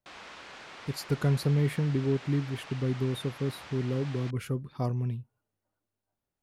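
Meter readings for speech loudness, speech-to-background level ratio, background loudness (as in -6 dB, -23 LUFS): -31.0 LUFS, 14.5 dB, -45.5 LUFS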